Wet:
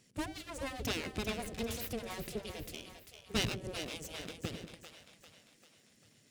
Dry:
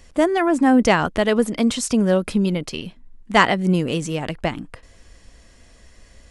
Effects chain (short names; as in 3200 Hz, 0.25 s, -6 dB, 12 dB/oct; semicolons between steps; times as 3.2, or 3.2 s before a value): full-wave rectifier; passive tone stack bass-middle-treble 10-0-1; spectral gate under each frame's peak -20 dB weak; split-band echo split 550 Hz, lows 95 ms, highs 0.395 s, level -8.5 dB; gain +10 dB